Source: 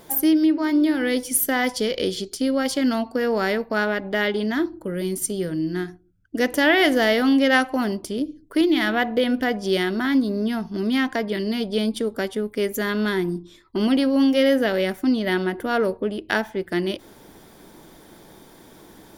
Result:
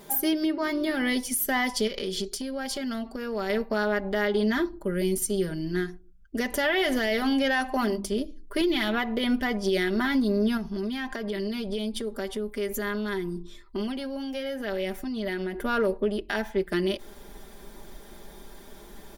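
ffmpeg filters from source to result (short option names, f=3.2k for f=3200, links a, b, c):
-filter_complex "[0:a]asettb=1/sr,asplit=3[a][b][c];[a]atrim=end=1.874[d];[b]atrim=start=1.87:end=3.5,asetpts=PTS-STARTPTS,afade=t=in:d=0.004:c=qsin,afade=t=out:st=1.626:d=0.004:c=qsin,acompressor=threshold=-26dB:ratio=6:attack=3.2:release=140:knee=1:detection=peak[e];[c]atrim=start=3.496[f];[d][e]acrossfade=d=0.004:c1=hsin:c2=qsin[g];[g][f]acrossfade=d=0.004:c1=qsin:c2=hsin,asettb=1/sr,asplit=3[h][i][j];[h]atrim=end=7.074[k];[i]atrim=start=7.07:end=8.12,asetpts=PTS-STARTPTS,afade=t=in:d=0.004:c=qsin,afade=t=out:st=1.046:d=0.004:c=qsin,bandreject=f=50:t=h:w=6,bandreject=f=100:t=h:w=6,bandreject=f=150:t=h:w=6,bandreject=f=200:t=h:w=6,bandreject=f=250:t=h:w=6,bandreject=f=300:t=h:w=6[l];[j]atrim=start=8.116[m];[k][l]acrossfade=d=0.004:c1=hsin:c2=qsin[n];[n][m]acrossfade=d=0.004:c1=qsin:c2=hsin,asettb=1/sr,asplit=3[o][p][q];[o]atrim=end=10.574[r];[p]atrim=start=10.57:end=15.62,asetpts=PTS-STARTPTS,afade=t=in:d=0.004:c=qsin,afade=t=out:st=5.046:d=0.004:c=qsin,acompressor=threshold=-27dB:ratio=5:attack=3.2:release=140:knee=1:detection=peak[s];[q]atrim=start=15.616[t];[r][s]acrossfade=d=0.004:c1=hsin:c2=qsin[u];[u][t]acrossfade=d=0.004:c1=qsin:c2=hsin,asubboost=boost=6:cutoff=53,aecho=1:1:5:0.67,alimiter=limit=-14.5dB:level=0:latency=1:release=86,volume=-2dB"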